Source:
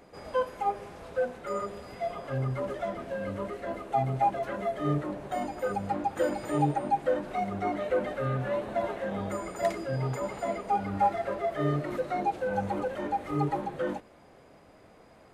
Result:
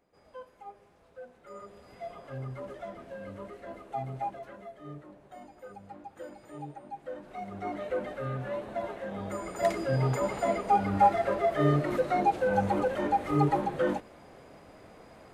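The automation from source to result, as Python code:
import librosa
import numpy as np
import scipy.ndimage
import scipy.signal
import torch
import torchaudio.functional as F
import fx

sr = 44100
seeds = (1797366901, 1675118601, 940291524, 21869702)

y = fx.gain(x, sr, db=fx.line((1.2, -17.5), (1.99, -8.0), (4.19, -8.0), (4.78, -16.0), (6.87, -16.0), (7.74, -4.5), (9.14, -4.5), (9.88, 3.5)))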